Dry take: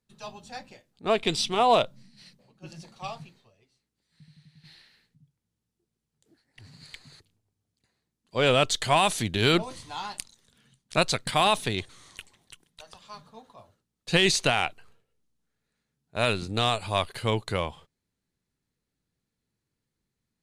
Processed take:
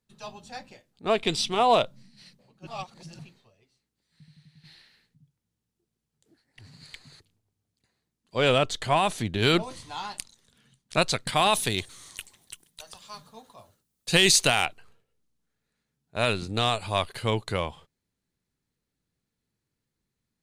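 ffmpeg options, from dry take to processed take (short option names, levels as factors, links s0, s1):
-filter_complex "[0:a]asettb=1/sr,asplit=3[s0][s1][s2];[s0]atrim=end=8.584[s3];[s1]atrim=start=8.58:end=9.42,asetpts=PTS-STARTPTS,afade=t=in:d=0.004:c=qsin,afade=t=out:st=0.836:d=0.004:c=qsin,highshelf=f=2400:g=-7.5[s4];[s2]atrim=start=9.416[s5];[s3][s4]acrossfade=d=0.004:c1=hsin:c2=qsin[s6];[s6][s5]acrossfade=d=0.004:c1=qsin:c2=hsin,asettb=1/sr,asplit=3[s7][s8][s9];[s7]atrim=end=11.534[s10];[s8]atrim=start=11.53:end=14.66,asetpts=PTS-STARTPTS,afade=t=in:d=0.004:c=qsin,afade=t=out:st=3.126:d=0.004:c=qsin,aemphasis=mode=production:type=50kf[s11];[s9]atrim=start=14.656[s12];[s10][s11]acrossfade=d=0.004:c1=hsin:c2=qsin[s13];[s13][s12]acrossfade=d=0.004:c1=qsin:c2=hsin,asplit=3[s14][s15][s16];[s14]atrim=end=2.672[s17];[s15]atrim=start=2.668:end=3.192,asetpts=PTS-STARTPTS,areverse[s18];[s16]atrim=start=3.188[s19];[s17][s18]acrossfade=d=0.004:c1=hsin:c2=hsin[s20];[s20][s19]acrossfade=d=0.004:c1=hsin:c2=hsin"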